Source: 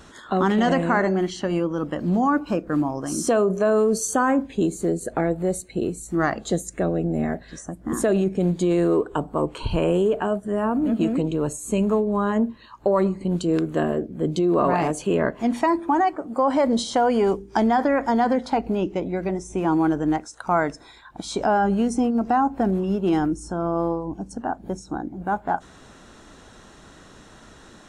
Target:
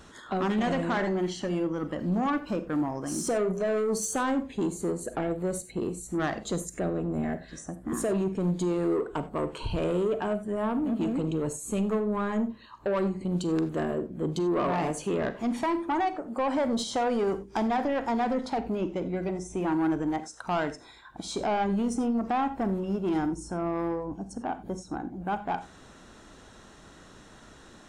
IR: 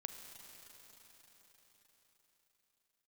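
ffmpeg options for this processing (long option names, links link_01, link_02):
-filter_complex "[0:a]asoftclip=type=tanh:threshold=-18dB[link_01];[1:a]atrim=start_sample=2205,atrim=end_sample=4410[link_02];[link_01][link_02]afir=irnorm=-1:irlink=0"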